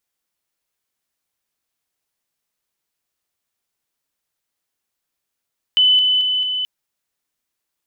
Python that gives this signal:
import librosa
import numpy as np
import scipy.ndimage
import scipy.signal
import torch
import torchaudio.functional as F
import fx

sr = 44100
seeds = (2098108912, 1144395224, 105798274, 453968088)

y = fx.level_ladder(sr, hz=3010.0, from_db=-10.0, step_db=-3.0, steps=4, dwell_s=0.22, gap_s=0.0)